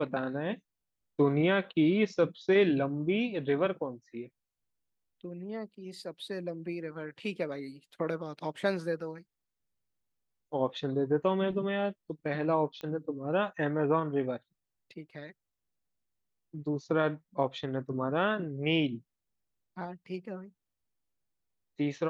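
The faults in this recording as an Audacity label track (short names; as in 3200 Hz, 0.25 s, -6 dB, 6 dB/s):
12.810000	12.810000	pop -28 dBFS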